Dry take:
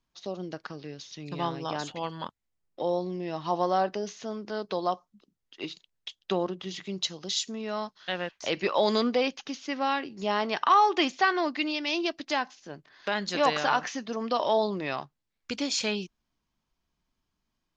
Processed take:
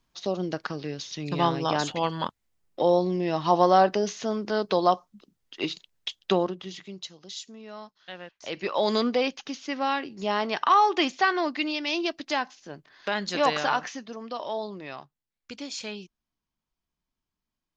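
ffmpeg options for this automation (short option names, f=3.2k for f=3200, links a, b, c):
-af "volume=17dB,afade=t=out:st=6.22:d=0.33:silence=0.446684,afade=t=out:st=6.55:d=0.5:silence=0.354813,afade=t=in:st=8.34:d=0.62:silence=0.316228,afade=t=out:st=13.6:d=0.61:silence=0.398107"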